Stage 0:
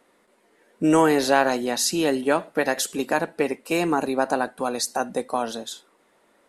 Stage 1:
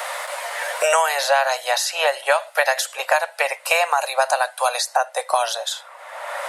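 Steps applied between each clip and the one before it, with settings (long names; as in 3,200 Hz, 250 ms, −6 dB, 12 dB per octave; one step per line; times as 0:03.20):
Butterworth high-pass 560 Hz 72 dB per octave
multiband upward and downward compressor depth 100%
level +6 dB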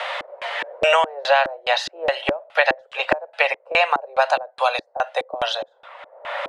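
low-shelf EQ 460 Hz +8.5 dB
auto-filter low-pass square 2.4 Hz 330–3,200 Hz
level −2 dB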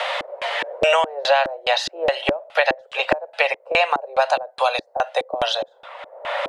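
parametric band 1,500 Hz −4.5 dB 1.8 octaves
in parallel at +2.5 dB: downward compressor, threshold −27 dBFS, peak gain reduction 13 dB
on the sum: level −1 dB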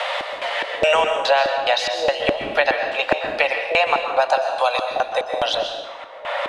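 dense smooth reverb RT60 1 s, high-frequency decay 0.9×, pre-delay 110 ms, DRR 4.5 dB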